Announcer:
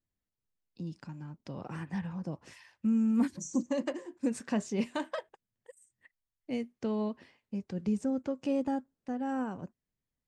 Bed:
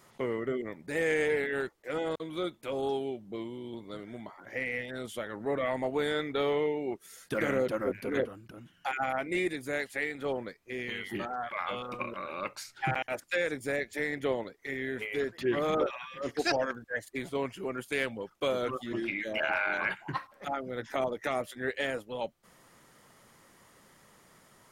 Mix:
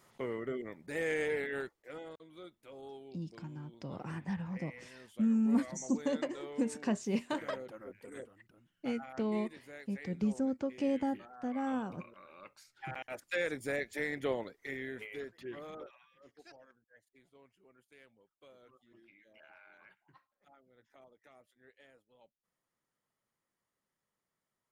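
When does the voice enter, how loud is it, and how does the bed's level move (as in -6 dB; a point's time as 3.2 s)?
2.35 s, -1.5 dB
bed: 1.57 s -5.5 dB
2.19 s -17 dB
12.61 s -17 dB
13.41 s -3.5 dB
14.63 s -3.5 dB
16.58 s -29.5 dB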